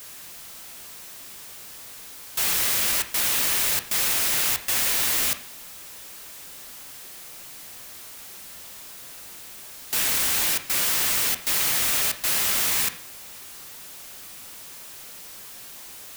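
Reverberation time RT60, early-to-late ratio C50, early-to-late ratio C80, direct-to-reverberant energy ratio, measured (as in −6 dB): 0.50 s, 12.5 dB, 16.0 dB, 7.5 dB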